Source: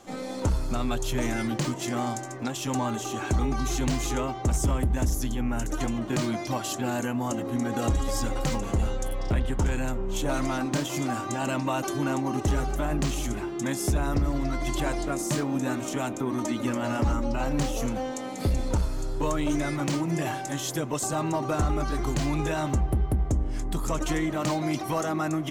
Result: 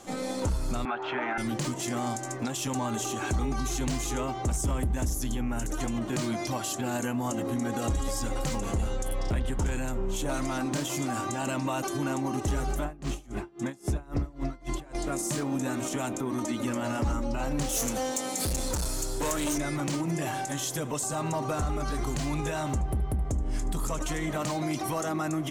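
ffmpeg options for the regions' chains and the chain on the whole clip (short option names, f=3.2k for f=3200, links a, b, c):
-filter_complex "[0:a]asettb=1/sr,asplit=3[a][b][c];[a]atrim=end=0.854[d];[b]atrim=start=0.85:end=1.38,asetpts=PTS-STARTPTS,afade=t=in:d=0.004:c=qsin,afade=t=out:st=0.526:d=0.004:c=qsin,highpass=450,equalizer=f=510:t=q:w=4:g=-8,equalizer=f=820:t=q:w=4:g=8,equalizer=f=1.4k:t=q:w=4:g=8,lowpass=f=2.5k:w=0.5412,lowpass=f=2.5k:w=1.3066,acontrast=31[e];[c]atrim=start=1.376[f];[d][e]acrossfade=d=0.004:c1=hsin:c2=qsin[g];[g][f]acrossfade=d=0.004:c1=qsin:c2=hsin,asettb=1/sr,asplit=3[h][i][j];[h]atrim=end=12.844[k];[i]atrim=start=12.84:end=14.95,asetpts=PTS-STARTPTS,afade=t=in:d=0.004:c=qsin,afade=t=out:st=2.106:d=0.004:c=qsin,highshelf=f=3.7k:g=-9.5,aeval=exprs='val(0)*pow(10,-26*(0.5-0.5*cos(2*PI*3.7*n/s))/20)':c=same[l];[j]atrim=start=14.946[m];[k][l]acrossfade=d=0.004:c1=hsin:c2=qsin[n];[n][m]acrossfade=d=0.004:c1=qsin:c2=hsin,asettb=1/sr,asplit=3[o][p][q];[o]atrim=end=17.694[r];[p]atrim=start=17.69:end=19.58,asetpts=PTS-STARTPTS,afade=t=in:d=0.004:c=qsin,afade=t=out:st=1.886:d=0.004:c=qsin,bass=f=250:g=-5,treble=f=4k:g=11,asoftclip=type=hard:threshold=-28.5dB[s];[q]atrim=start=19.576[t];[r][s]acrossfade=d=0.004:c1=hsin:c2=qsin[u];[u][t]acrossfade=d=0.004:c1=qsin:c2=hsin,asettb=1/sr,asplit=3[v][w][x];[v]atrim=end=20.294[y];[w]atrim=start=20.29:end=24.57,asetpts=PTS-STARTPTS,afade=t=in:d=0.004:c=qsin,afade=t=out:st=4.276:d=0.004:c=qsin,bandreject=f=330:w=8.7,aecho=1:1:75:0.126,atrim=end_sample=188748[z];[x]atrim=start=24.566[aa];[y][z]acrossfade=d=0.004:c1=hsin:c2=qsin[ab];[ab][aa]acrossfade=d=0.004:c1=qsin:c2=hsin,equalizer=f=9.3k:t=o:w=1.1:g=5.5,alimiter=limit=-24dB:level=0:latency=1:release=112,volume=2dB"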